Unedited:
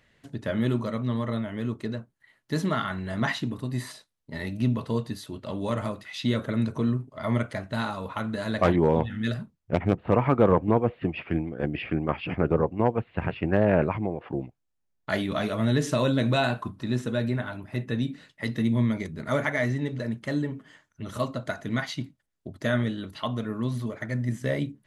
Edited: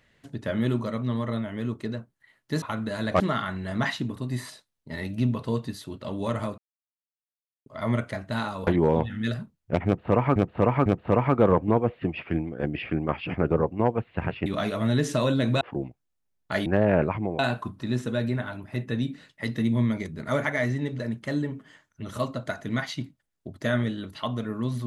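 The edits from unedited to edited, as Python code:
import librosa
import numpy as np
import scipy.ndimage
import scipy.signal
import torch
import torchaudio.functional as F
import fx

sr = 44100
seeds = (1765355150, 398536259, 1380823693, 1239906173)

y = fx.edit(x, sr, fx.silence(start_s=6.0, length_s=1.08),
    fx.move(start_s=8.09, length_s=0.58, to_s=2.62),
    fx.repeat(start_s=9.86, length_s=0.5, count=3),
    fx.swap(start_s=13.46, length_s=0.73, other_s=15.24, other_length_s=1.15), tone=tone)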